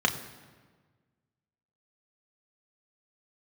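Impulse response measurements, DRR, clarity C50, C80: 2.5 dB, 11.5 dB, 12.5 dB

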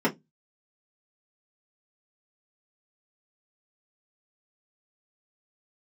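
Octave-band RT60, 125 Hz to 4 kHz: 0.30, 0.25, 0.20, 0.15, 0.10, 0.10 s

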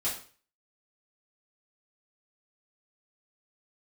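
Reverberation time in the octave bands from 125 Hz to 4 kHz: 0.50, 0.40, 0.40, 0.40, 0.40, 0.40 s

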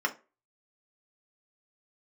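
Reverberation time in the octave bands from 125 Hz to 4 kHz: 0.25, 0.30, 0.35, 0.30, 0.30, 0.20 s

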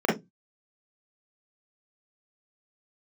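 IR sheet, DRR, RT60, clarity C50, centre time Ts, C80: -6.0 dB, 0.15 s, 7.0 dB, 40 ms, 17.0 dB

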